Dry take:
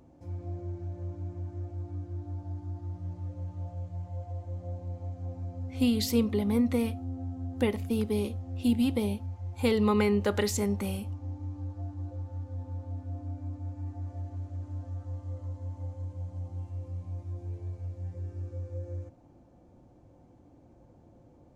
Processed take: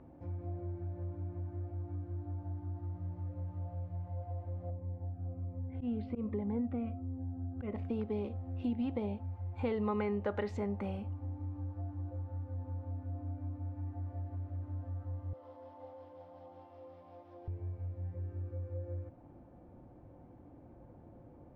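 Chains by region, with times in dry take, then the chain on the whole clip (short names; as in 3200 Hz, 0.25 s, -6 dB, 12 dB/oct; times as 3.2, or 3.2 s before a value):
4.7–7.75 auto swell 0.11 s + air absorption 490 m + cascading phaser falling 1.3 Hz
15.33–17.48 companded quantiser 8-bit + speaker cabinet 470–5400 Hz, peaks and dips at 470 Hz +4 dB, 740 Hz +3 dB, 1600 Hz -3 dB, 2300 Hz -4 dB, 3400 Hz +5 dB, 5200 Hz +6 dB
whole clip: Chebyshev low-pass 1800 Hz, order 2; dynamic EQ 690 Hz, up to +6 dB, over -49 dBFS, Q 1.8; compressor 2:1, threshold -43 dBFS; gain +2.5 dB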